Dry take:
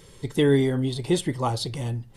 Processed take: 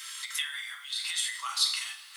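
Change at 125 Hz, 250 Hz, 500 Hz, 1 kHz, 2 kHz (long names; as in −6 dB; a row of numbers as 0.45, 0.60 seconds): below −40 dB, below −40 dB, below −40 dB, −8.5 dB, +1.5 dB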